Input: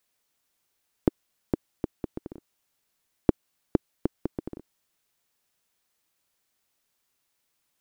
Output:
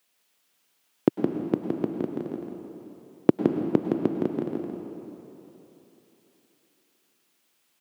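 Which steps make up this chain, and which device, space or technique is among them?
PA in a hall (HPF 140 Hz 24 dB/oct; bell 2900 Hz +4 dB 0.67 oct; echo 0.166 s -5 dB; reverb RT60 3.5 s, pre-delay 96 ms, DRR 5 dB); gain +4 dB

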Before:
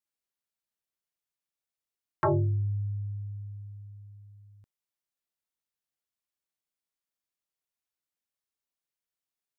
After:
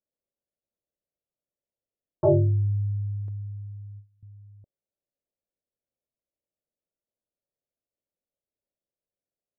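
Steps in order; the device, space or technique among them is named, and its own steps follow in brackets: under water (LPF 620 Hz 24 dB/oct; bell 570 Hz +8 dB 0.48 oct); 3.28–4.23 gate with hold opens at -41 dBFS; gain +5 dB

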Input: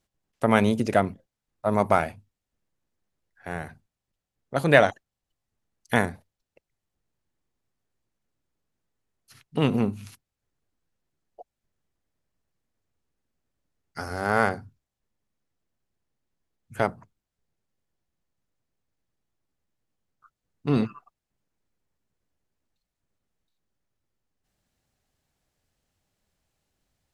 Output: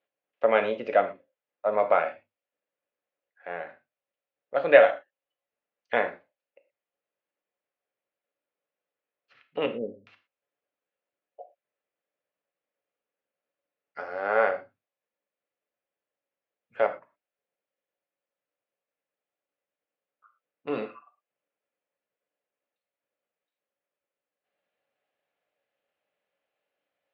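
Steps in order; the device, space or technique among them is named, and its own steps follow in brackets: 9.66–10.07 steep low-pass 560 Hz 48 dB/oct; phone earpiece (speaker cabinet 480–3100 Hz, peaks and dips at 550 Hz +10 dB, 940 Hz -3 dB, 2500 Hz +3 dB); non-linear reverb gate 0.14 s falling, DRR 6 dB; gain -3 dB

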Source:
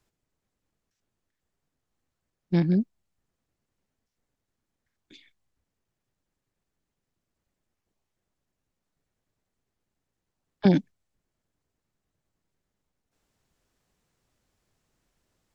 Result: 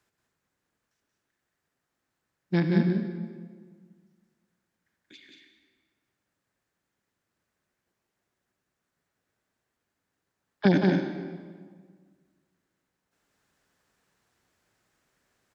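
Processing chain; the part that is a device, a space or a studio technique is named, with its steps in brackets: stadium PA (HPF 160 Hz 6 dB/oct; bell 1600 Hz +6.5 dB 0.88 oct; loudspeakers at several distances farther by 62 m -4 dB, 78 m -10 dB; reverb RT60 1.7 s, pre-delay 64 ms, DRR 6.5 dB)

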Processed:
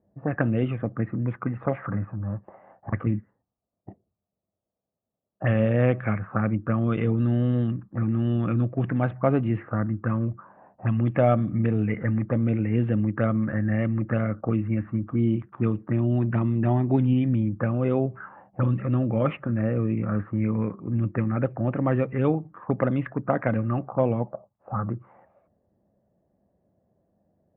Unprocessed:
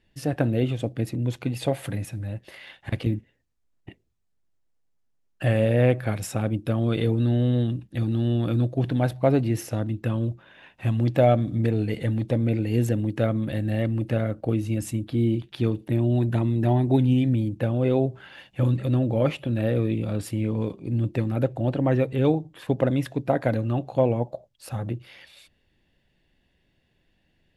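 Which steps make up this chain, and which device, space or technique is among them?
19.51–19.97 air absorption 450 m; envelope filter bass rig (envelope low-pass 630–3200 Hz up, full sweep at -18.5 dBFS; speaker cabinet 72–2000 Hz, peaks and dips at 100 Hz +5 dB, 200 Hz +9 dB, 1200 Hz +10 dB); gain -3 dB

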